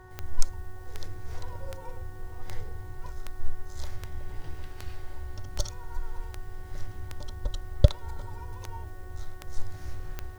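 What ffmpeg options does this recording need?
ffmpeg -i in.wav -af "adeclick=threshold=4,bandreject=frequency=370:width_type=h:width=4,bandreject=frequency=740:width_type=h:width=4,bandreject=frequency=1110:width_type=h:width=4,bandreject=frequency=1480:width_type=h:width=4,bandreject=frequency=1850:width_type=h:width=4" out.wav

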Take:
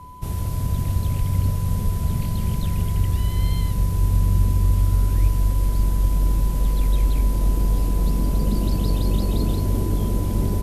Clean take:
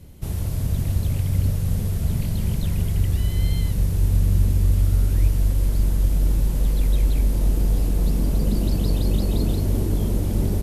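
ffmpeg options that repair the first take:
ffmpeg -i in.wav -filter_complex "[0:a]bandreject=frequency=1000:width=30,asplit=3[link_01][link_02][link_03];[link_01]afade=type=out:start_time=1.18:duration=0.02[link_04];[link_02]highpass=frequency=140:width=0.5412,highpass=frequency=140:width=1.3066,afade=type=in:start_time=1.18:duration=0.02,afade=type=out:start_time=1.3:duration=0.02[link_05];[link_03]afade=type=in:start_time=1.3:duration=0.02[link_06];[link_04][link_05][link_06]amix=inputs=3:normalize=0,asplit=3[link_07][link_08][link_09];[link_07]afade=type=out:start_time=1.84:duration=0.02[link_10];[link_08]highpass=frequency=140:width=0.5412,highpass=frequency=140:width=1.3066,afade=type=in:start_time=1.84:duration=0.02,afade=type=out:start_time=1.96:duration=0.02[link_11];[link_09]afade=type=in:start_time=1.96:duration=0.02[link_12];[link_10][link_11][link_12]amix=inputs=3:normalize=0" out.wav

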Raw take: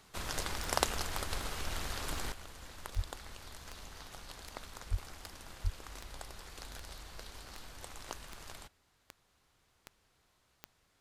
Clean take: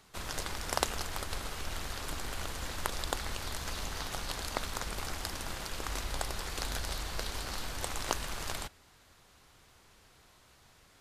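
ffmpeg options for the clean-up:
ffmpeg -i in.wav -filter_complex "[0:a]adeclick=threshold=4,asplit=3[link_01][link_02][link_03];[link_01]afade=type=out:start_time=2.95:duration=0.02[link_04];[link_02]highpass=frequency=140:width=0.5412,highpass=frequency=140:width=1.3066,afade=type=in:start_time=2.95:duration=0.02,afade=type=out:start_time=3.07:duration=0.02[link_05];[link_03]afade=type=in:start_time=3.07:duration=0.02[link_06];[link_04][link_05][link_06]amix=inputs=3:normalize=0,asplit=3[link_07][link_08][link_09];[link_07]afade=type=out:start_time=4.9:duration=0.02[link_10];[link_08]highpass=frequency=140:width=0.5412,highpass=frequency=140:width=1.3066,afade=type=in:start_time=4.9:duration=0.02,afade=type=out:start_time=5.02:duration=0.02[link_11];[link_09]afade=type=in:start_time=5.02:duration=0.02[link_12];[link_10][link_11][link_12]amix=inputs=3:normalize=0,asplit=3[link_13][link_14][link_15];[link_13]afade=type=out:start_time=5.63:duration=0.02[link_16];[link_14]highpass=frequency=140:width=0.5412,highpass=frequency=140:width=1.3066,afade=type=in:start_time=5.63:duration=0.02,afade=type=out:start_time=5.75:duration=0.02[link_17];[link_15]afade=type=in:start_time=5.75:duration=0.02[link_18];[link_16][link_17][link_18]amix=inputs=3:normalize=0,asetnsamples=nb_out_samples=441:pad=0,asendcmd='2.32 volume volume 11.5dB',volume=0dB" out.wav

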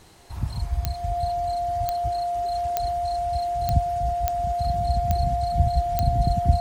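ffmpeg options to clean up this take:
ffmpeg -i in.wav -af "adeclick=threshold=4,bandreject=frequency=700:width=30" out.wav

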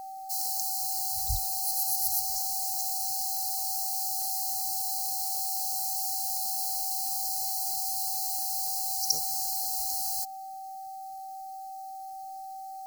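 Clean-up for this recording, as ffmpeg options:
ffmpeg -i in.wav -af "bandreject=frequency=770:width=30,agate=range=-21dB:threshold=-33dB" out.wav

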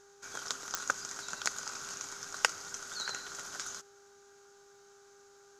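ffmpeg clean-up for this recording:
ffmpeg -i in.wav -af "adeclick=threshold=4,bandreject=frequency=400.7:width_type=h:width=4,bandreject=frequency=801.4:width_type=h:width=4,bandreject=frequency=1202.1:width_type=h:width=4,bandreject=frequency=1602.8:width_type=h:width=4" out.wav

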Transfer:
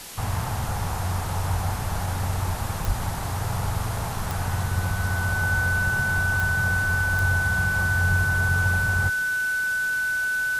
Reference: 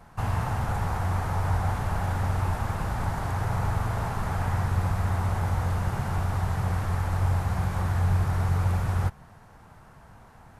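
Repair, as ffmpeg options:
ffmpeg -i in.wav -filter_complex "[0:a]adeclick=threshold=4,bandreject=frequency=1500:width=30,asplit=3[link_01][link_02][link_03];[link_01]afade=type=out:start_time=2.86:duration=0.02[link_04];[link_02]highpass=frequency=140:width=0.5412,highpass=frequency=140:width=1.3066,afade=type=in:start_time=2.86:duration=0.02,afade=type=out:start_time=2.98:duration=0.02[link_05];[link_03]afade=type=in:start_time=2.98:duration=0.02[link_06];[link_04][link_05][link_06]amix=inputs=3:normalize=0,afwtdn=0.013" out.wav

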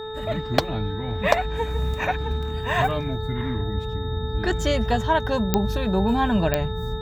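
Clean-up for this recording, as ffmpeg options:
ffmpeg -i in.wav -af "adeclick=threshold=4,bandreject=frequency=436:width_type=h:width=4,bandreject=frequency=872:width_type=h:width=4,bandreject=frequency=1308:width_type=h:width=4,bandreject=frequency=1744:width_type=h:width=4,bandreject=frequency=3700:width=30" out.wav

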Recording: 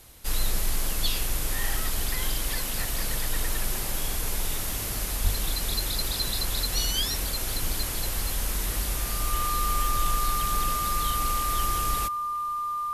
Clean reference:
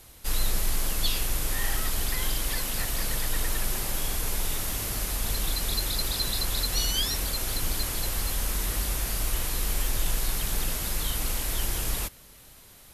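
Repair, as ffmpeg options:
ffmpeg -i in.wav -filter_complex "[0:a]bandreject=frequency=1200:width=30,asplit=3[link_01][link_02][link_03];[link_01]afade=type=out:start_time=5.23:duration=0.02[link_04];[link_02]highpass=frequency=140:width=0.5412,highpass=frequency=140:width=1.3066,afade=type=in:start_time=5.23:duration=0.02,afade=type=out:start_time=5.35:duration=0.02[link_05];[link_03]afade=type=in:start_time=5.35:duration=0.02[link_06];[link_04][link_05][link_06]amix=inputs=3:normalize=0" out.wav

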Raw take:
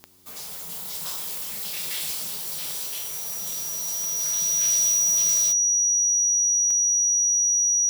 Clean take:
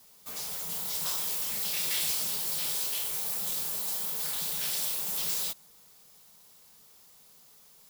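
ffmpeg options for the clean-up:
ffmpeg -i in.wav -af "adeclick=threshold=4,bandreject=frequency=90.8:width_type=h:width=4,bandreject=frequency=181.6:width_type=h:width=4,bandreject=frequency=272.4:width_type=h:width=4,bandreject=frequency=363.2:width_type=h:width=4,bandreject=frequency=5800:width=30" out.wav

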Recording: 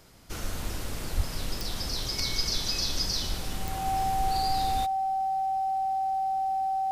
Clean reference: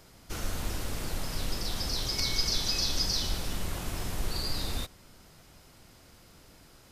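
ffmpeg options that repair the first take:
ffmpeg -i in.wav -filter_complex "[0:a]adeclick=threshold=4,bandreject=frequency=770:width=30,asplit=3[link_01][link_02][link_03];[link_01]afade=type=out:start_time=1.16:duration=0.02[link_04];[link_02]highpass=frequency=140:width=0.5412,highpass=frequency=140:width=1.3066,afade=type=in:start_time=1.16:duration=0.02,afade=type=out:start_time=1.28:duration=0.02[link_05];[link_03]afade=type=in:start_time=1.28:duration=0.02[link_06];[link_04][link_05][link_06]amix=inputs=3:normalize=0" out.wav

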